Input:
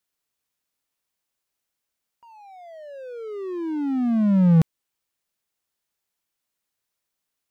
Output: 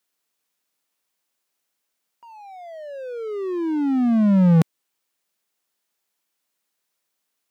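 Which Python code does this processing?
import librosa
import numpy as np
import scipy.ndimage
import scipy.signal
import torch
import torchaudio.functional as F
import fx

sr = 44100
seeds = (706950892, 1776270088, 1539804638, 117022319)

y = scipy.signal.sosfilt(scipy.signal.butter(2, 180.0, 'highpass', fs=sr, output='sos'), x)
y = y * 10.0 ** (4.5 / 20.0)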